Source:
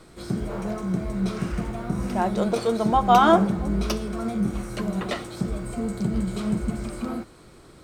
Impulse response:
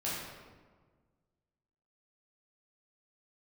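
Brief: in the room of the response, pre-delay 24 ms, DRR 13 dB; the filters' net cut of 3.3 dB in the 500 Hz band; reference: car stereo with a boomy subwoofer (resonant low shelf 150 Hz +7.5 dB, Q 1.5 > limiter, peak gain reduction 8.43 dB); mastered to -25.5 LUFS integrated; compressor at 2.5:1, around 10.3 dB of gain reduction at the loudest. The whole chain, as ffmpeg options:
-filter_complex "[0:a]equalizer=f=500:t=o:g=-4,acompressor=threshold=-29dB:ratio=2.5,asplit=2[a][b];[1:a]atrim=start_sample=2205,adelay=24[c];[b][c]afir=irnorm=-1:irlink=0,volume=-18dB[d];[a][d]amix=inputs=2:normalize=0,lowshelf=f=150:t=q:w=1.5:g=7.5,volume=7dB,alimiter=limit=-16dB:level=0:latency=1"

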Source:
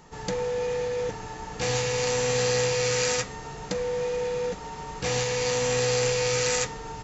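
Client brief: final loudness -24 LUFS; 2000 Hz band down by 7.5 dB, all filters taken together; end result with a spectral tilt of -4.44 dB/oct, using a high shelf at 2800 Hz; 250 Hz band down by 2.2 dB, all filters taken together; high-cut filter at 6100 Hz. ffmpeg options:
-af "lowpass=6.1k,equalizer=f=250:t=o:g=-3,equalizer=f=2k:t=o:g=-6,highshelf=f=2.8k:g=-7.5,volume=5.5dB"

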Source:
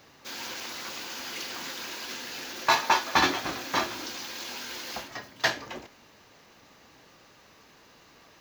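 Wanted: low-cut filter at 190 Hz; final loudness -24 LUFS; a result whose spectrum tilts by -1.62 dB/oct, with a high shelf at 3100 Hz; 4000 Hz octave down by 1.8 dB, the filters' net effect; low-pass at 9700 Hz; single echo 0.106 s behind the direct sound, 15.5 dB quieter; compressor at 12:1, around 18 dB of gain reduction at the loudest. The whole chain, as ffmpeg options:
-af "highpass=190,lowpass=9.7k,highshelf=f=3.1k:g=7,equalizer=f=4k:t=o:g=-7.5,acompressor=threshold=-36dB:ratio=12,aecho=1:1:106:0.168,volume=15dB"

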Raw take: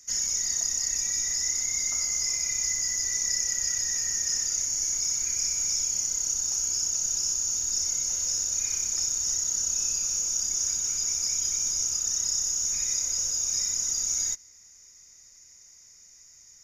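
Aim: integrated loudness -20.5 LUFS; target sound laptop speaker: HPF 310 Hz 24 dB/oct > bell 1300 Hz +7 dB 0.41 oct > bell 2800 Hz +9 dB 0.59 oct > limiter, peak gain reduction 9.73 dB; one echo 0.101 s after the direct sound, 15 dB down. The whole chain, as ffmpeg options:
-af "highpass=f=310:w=0.5412,highpass=f=310:w=1.3066,equalizer=f=1.3k:t=o:w=0.41:g=7,equalizer=f=2.8k:t=o:w=0.59:g=9,aecho=1:1:101:0.178,volume=8.5dB,alimiter=limit=-15dB:level=0:latency=1"

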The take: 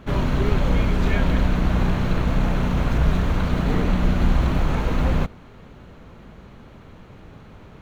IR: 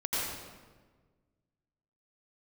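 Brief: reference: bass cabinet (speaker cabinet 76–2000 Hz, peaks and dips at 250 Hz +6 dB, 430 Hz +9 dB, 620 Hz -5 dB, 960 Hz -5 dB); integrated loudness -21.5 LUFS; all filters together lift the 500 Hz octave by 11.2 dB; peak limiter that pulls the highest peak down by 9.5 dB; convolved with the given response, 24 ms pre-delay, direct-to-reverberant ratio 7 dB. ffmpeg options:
-filter_complex "[0:a]equalizer=f=500:t=o:g=8.5,alimiter=limit=-15dB:level=0:latency=1,asplit=2[a][b];[1:a]atrim=start_sample=2205,adelay=24[c];[b][c]afir=irnorm=-1:irlink=0,volume=-14.5dB[d];[a][d]amix=inputs=2:normalize=0,highpass=f=76:w=0.5412,highpass=f=76:w=1.3066,equalizer=f=250:t=q:w=4:g=6,equalizer=f=430:t=q:w=4:g=9,equalizer=f=620:t=q:w=4:g=-5,equalizer=f=960:t=q:w=4:g=-5,lowpass=f=2k:w=0.5412,lowpass=f=2k:w=1.3066,volume=1.5dB"

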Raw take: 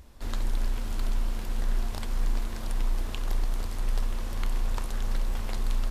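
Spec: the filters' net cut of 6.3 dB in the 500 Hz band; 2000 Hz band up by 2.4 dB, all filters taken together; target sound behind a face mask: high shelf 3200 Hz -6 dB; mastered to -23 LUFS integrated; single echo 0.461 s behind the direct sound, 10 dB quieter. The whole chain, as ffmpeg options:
-af "equalizer=f=500:t=o:g=-8.5,equalizer=f=2k:t=o:g=5.5,highshelf=f=3.2k:g=-6,aecho=1:1:461:0.316,volume=12dB"

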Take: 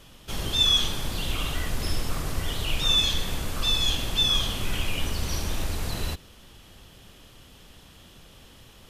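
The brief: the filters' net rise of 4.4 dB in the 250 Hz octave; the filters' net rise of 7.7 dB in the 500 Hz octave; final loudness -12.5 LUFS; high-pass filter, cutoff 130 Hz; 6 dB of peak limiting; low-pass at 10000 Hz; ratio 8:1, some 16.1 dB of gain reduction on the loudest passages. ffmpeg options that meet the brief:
-af "highpass=130,lowpass=10k,equalizer=f=250:t=o:g=4,equalizer=f=500:t=o:g=8.5,acompressor=threshold=-35dB:ratio=8,volume=28dB,alimiter=limit=-3.5dB:level=0:latency=1"

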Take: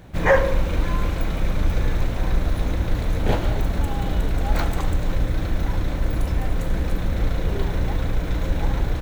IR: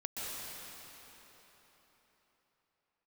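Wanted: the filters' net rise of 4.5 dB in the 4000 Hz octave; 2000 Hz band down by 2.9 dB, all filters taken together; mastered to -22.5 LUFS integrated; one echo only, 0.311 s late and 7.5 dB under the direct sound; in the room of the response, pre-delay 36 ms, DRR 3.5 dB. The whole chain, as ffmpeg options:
-filter_complex "[0:a]equalizer=f=2k:t=o:g=-5,equalizer=f=4k:t=o:g=7,aecho=1:1:311:0.422,asplit=2[a][b];[1:a]atrim=start_sample=2205,adelay=36[c];[b][c]afir=irnorm=-1:irlink=0,volume=-6.5dB[d];[a][d]amix=inputs=2:normalize=0,volume=0.5dB"

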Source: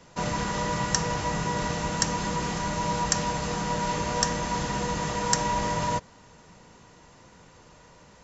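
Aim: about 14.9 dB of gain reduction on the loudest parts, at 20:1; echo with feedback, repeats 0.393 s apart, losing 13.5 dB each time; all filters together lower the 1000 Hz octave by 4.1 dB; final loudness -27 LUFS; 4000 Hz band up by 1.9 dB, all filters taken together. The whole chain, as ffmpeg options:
-af "equalizer=f=1k:t=o:g=-4.5,equalizer=f=4k:t=o:g=3,acompressor=threshold=-35dB:ratio=20,aecho=1:1:393|786:0.211|0.0444,volume=12dB"

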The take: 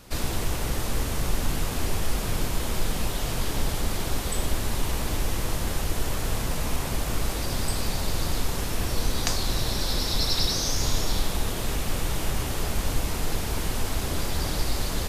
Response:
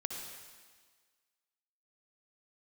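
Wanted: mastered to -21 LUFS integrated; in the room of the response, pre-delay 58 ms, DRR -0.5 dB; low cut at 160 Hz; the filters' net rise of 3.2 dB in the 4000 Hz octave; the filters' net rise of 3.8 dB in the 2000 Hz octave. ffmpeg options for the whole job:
-filter_complex "[0:a]highpass=160,equalizer=f=2k:t=o:g=4,equalizer=f=4k:t=o:g=3,asplit=2[a][b];[1:a]atrim=start_sample=2205,adelay=58[c];[b][c]afir=irnorm=-1:irlink=0,volume=-0.5dB[d];[a][d]amix=inputs=2:normalize=0,volume=4dB"

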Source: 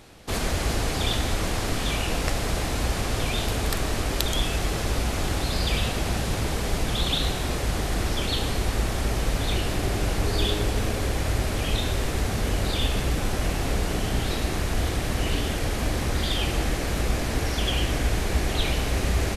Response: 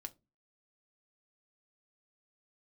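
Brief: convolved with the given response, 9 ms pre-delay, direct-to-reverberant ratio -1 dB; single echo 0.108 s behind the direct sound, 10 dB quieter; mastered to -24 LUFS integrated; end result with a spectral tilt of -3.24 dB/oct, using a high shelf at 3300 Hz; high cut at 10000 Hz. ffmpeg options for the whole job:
-filter_complex "[0:a]lowpass=10k,highshelf=f=3.3k:g=7.5,aecho=1:1:108:0.316,asplit=2[a][b];[1:a]atrim=start_sample=2205,adelay=9[c];[b][c]afir=irnorm=-1:irlink=0,volume=5.5dB[d];[a][d]amix=inputs=2:normalize=0,volume=-2.5dB"

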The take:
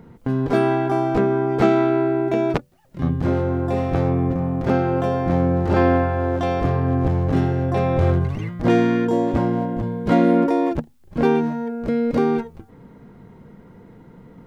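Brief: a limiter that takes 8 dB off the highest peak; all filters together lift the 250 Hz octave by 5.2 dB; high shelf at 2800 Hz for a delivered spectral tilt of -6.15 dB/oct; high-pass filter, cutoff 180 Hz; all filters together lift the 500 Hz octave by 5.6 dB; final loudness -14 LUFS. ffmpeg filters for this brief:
-af "highpass=180,equalizer=f=250:t=o:g=6,equalizer=f=500:t=o:g=5.5,highshelf=f=2.8k:g=-6,volume=4dB,alimiter=limit=-4dB:level=0:latency=1"

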